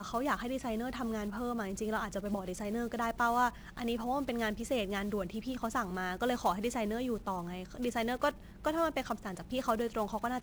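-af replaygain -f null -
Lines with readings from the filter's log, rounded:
track_gain = +15.4 dB
track_peak = 0.088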